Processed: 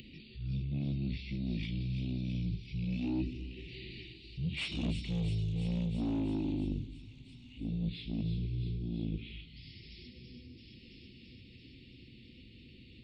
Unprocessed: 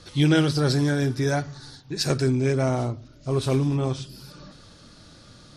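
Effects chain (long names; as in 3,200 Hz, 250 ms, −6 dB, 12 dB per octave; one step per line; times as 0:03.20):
source passing by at 0:02.20, 7 m/s, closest 3.2 metres
elliptic band-stop filter 810–6,500 Hz, stop band 40 dB
mid-hump overdrive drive 22 dB, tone 2,800 Hz, clips at −12 dBFS
low-shelf EQ 85 Hz −6.5 dB
reversed playback
downward compressor, threshold −31 dBFS, peak gain reduction 12 dB
reversed playback
wrong playback speed 78 rpm record played at 33 rpm
on a send: delay with a high-pass on its return 334 ms, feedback 70%, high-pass 4,500 Hz, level −3 dB
on the sum: upward compression, threshold −43 dBFS
high-shelf EQ 5,300 Hz +8.5 dB
level −1.5 dB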